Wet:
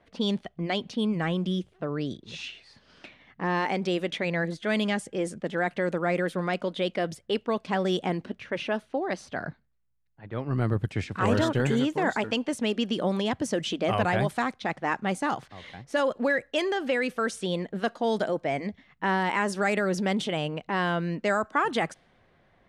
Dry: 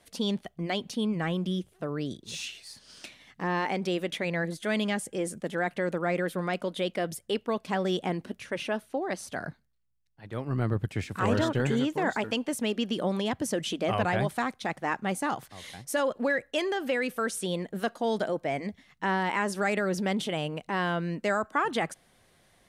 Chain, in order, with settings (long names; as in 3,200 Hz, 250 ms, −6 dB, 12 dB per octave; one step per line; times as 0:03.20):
low-pass that shuts in the quiet parts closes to 2,000 Hz, open at −22.5 dBFS
level +2 dB